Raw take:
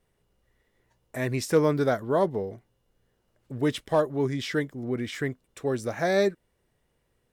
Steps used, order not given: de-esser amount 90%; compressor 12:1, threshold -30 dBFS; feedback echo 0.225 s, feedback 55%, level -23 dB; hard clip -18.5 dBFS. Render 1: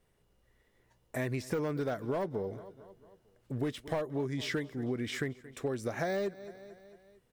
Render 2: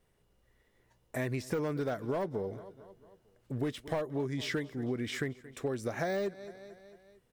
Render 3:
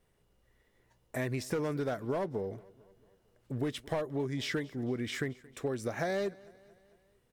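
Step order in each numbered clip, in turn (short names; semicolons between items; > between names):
de-esser > feedback echo > hard clip > compressor; feedback echo > de-esser > hard clip > compressor; hard clip > compressor > feedback echo > de-esser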